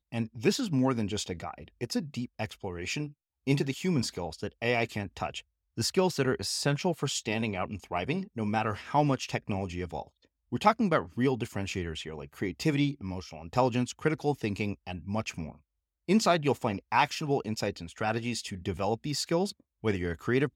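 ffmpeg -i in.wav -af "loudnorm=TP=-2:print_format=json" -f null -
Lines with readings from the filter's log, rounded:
"input_i" : "-30.9",
"input_tp" : "-9.9",
"input_lra" : "2.4",
"input_thresh" : "-41.1",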